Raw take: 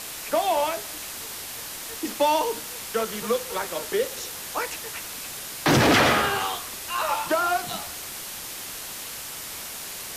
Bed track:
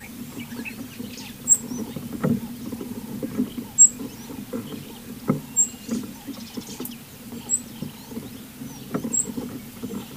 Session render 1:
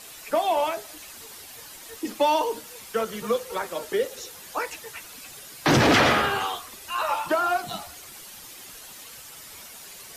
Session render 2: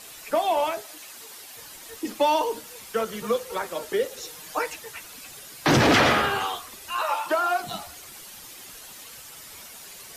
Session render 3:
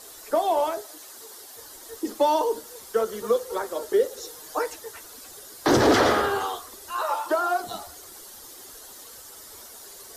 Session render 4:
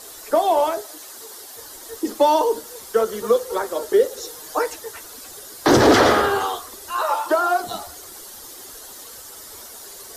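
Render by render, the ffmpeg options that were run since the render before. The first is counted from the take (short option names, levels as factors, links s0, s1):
-af "afftdn=nr=10:nf=-36"
-filter_complex "[0:a]asettb=1/sr,asplit=3[s0][s1][s2];[s0]atrim=end=0.814[s3];[s1]atrim=start=0.81:end=1.57,asetpts=PTS-STARTPTS,afade=t=in:d=0.004:c=qsin,afade=t=out:st=0.756:d=0.004:c=qsin,highpass=f=290:p=1[s4];[s2]atrim=start=1.566[s5];[s3][s4]acrossfade=d=0.004:c1=hsin:c2=qsin[s6];[s6][s5]acrossfade=d=0.004:c1=qsin:c2=hsin,asettb=1/sr,asplit=3[s7][s8][s9];[s7]atrim=end=4.224[s10];[s8]atrim=start=4.22:end=4.73,asetpts=PTS-STARTPTS,afade=t=in:d=0.004:c=qsin,afade=t=out:st=0.506:d=0.004:c=qsin,aecho=1:1:6.5:0.62,atrim=end_sample=22491[s11];[s9]atrim=start=4.726[s12];[s10][s11]acrossfade=d=0.004:c1=hsin:c2=qsin[s13];[s13][s12]acrossfade=d=0.004:c1=qsin:c2=hsin,asettb=1/sr,asplit=3[s14][s15][s16];[s14]atrim=end=7.024[s17];[s15]atrim=start=7.02:end=7.6,asetpts=PTS-STARTPTS,afade=t=in:d=0.004:c=qsin,afade=t=out:st=0.576:d=0.004:c=qsin,highpass=330[s18];[s16]atrim=start=7.596[s19];[s17][s18]acrossfade=d=0.004:c1=hsin:c2=qsin[s20];[s20][s19]acrossfade=d=0.004:c1=qsin:c2=hsin"
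-af "equalizer=f=160:t=o:w=0.67:g=-12,equalizer=f=400:t=o:w=0.67:g=6,equalizer=f=2500:t=o:w=0.67:g=-12"
-af "volume=1.78"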